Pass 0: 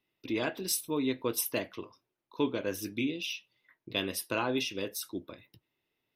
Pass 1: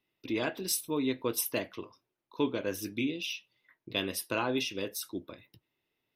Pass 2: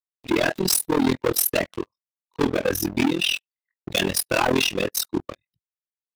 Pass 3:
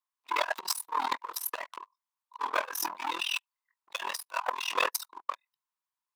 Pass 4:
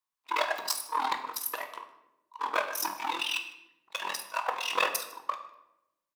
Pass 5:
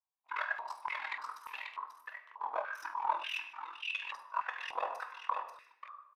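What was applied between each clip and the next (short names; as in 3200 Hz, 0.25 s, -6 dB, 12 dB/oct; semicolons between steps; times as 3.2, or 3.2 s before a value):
nothing audible
per-bin expansion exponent 1.5; sample leveller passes 5; AM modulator 41 Hz, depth 90%; gain +5.5 dB
auto swell 0.263 s; resonant high-pass 1000 Hz, resonance Q 7.7; negative-ratio compressor -26 dBFS, ratio -0.5; gain -3 dB
echo 0.154 s -22.5 dB; shoebox room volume 300 m³, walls mixed, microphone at 0.6 m
on a send: echo 0.538 s -5 dB; on the sum: stepped band-pass 3.4 Hz 770–2500 Hz; gain +1 dB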